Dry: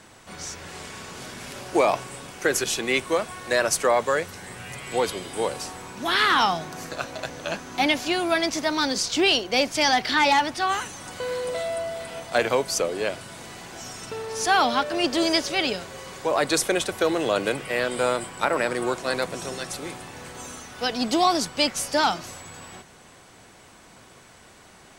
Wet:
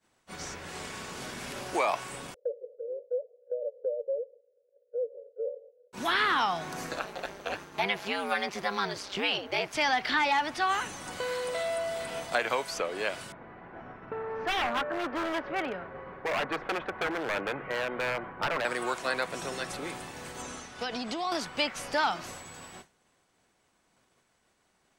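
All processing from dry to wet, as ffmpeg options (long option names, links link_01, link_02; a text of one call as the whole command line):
ffmpeg -i in.wav -filter_complex "[0:a]asettb=1/sr,asplit=3[link_01][link_02][link_03];[link_01]atrim=end=2.344[link_04];[link_02]atrim=start=2.34:end=5.93,asetpts=PTS-STARTPTS,afade=type=in:duration=0.004:curve=qsin,afade=type=out:start_time=3.586:duration=0.004:curve=qsin,asuperpass=centerf=510:order=8:qfactor=3.9,aemphasis=mode=reproduction:type=riaa[link_05];[link_03]atrim=start=5.926[link_06];[link_04][link_05]acrossfade=duration=0.004:curve1=hsin:curve2=qsin[link_07];[link_07][link_06]acrossfade=duration=0.004:curve1=qsin:curve2=hsin,asettb=1/sr,asplit=3[link_08][link_09][link_10];[link_08]atrim=end=6.994[link_11];[link_09]atrim=start=6.99:end=9.73,asetpts=PTS-STARTPTS,afade=type=in:duration=0.004:curve=qsin,afade=type=out:start_time=2.736:duration=0.004:curve=qsin,highpass=180,equalizer=frequency=7000:width=0.9:gain=-6.5,aeval=exprs='val(0)*sin(2*PI*98*n/s)':channel_layout=same[link_12];[link_10]atrim=start=9.726[link_13];[link_11][link_12]acrossfade=duration=0.004:curve1=hsin:curve2=qsin[link_14];[link_14][link_13]acrossfade=duration=0.004:curve1=qsin:curve2=hsin,asettb=1/sr,asplit=3[link_15][link_16][link_17];[link_15]atrim=end=13.324[link_18];[link_16]atrim=start=13.32:end=18.65,asetpts=PTS-STARTPTS,afade=type=in:duration=0.004:curve=qsin,afade=type=out:start_time=5.326:duration=0.004:curve=qsin,lowpass=frequency=1800:width=0.5412,lowpass=frequency=1800:width=1.3066,aeval=exprs='0.0944*(abs(mod(val(0)/0.0944+3,4)-2)-1)':channel_layout=same[link_19];[link_17]atrim=start=18.646[link_20];[link_18][link_19]acrossfade=duration=0.004:curve1=hsin:curve2=qsin[link_21];[link_21][link_20]acrossfade=duration=0.004:curve1=qsin:curve2=hsin,asettb=1/sr,asplit=3[link_22][link_23][link_24];[link_22]atrim=end=20.424[link_25];[link_23]atrim=start=20.42:end=21.32,asetpts=PTS-STARTPTS,afade=type=in:duration=0.004:curve=qsin,afade=type=out:start_time=0.896:duration=0.004:curve=qsin,lowpass=8300,acompressor=threshold=-26dB:ratio=6:attack=3.2:release=140:knee=1:detection=peak[link_26];[link_24]atrim=start=21.316[link_27];[link_25][link_26]acrossfade=duration=0.004:curve1=hsin:curve2=qsin[link_28];[link_28][link_27]acrossfade=duration=0.004:curve1=qsin:curve2=hsin,equalizer=frequency=100:width_type=o:width=0.77:gain=-4.5,agate=range=-33dB:threshold=-37dB:ratio=3:detection=peak,acrossover=split=770|3200[link_29][link_30][link_31];[link_29]acompressor=threshold=-36dB:ratio=4[link_32];[link_30]acompressor=threshold=-25dB:ratio=4[link_33];[link_31]acompressor=threshold=-44dB:ratio=4[link_34];[link_32][link_33][link_34]amix=inputs=3:normalize=0" out.wav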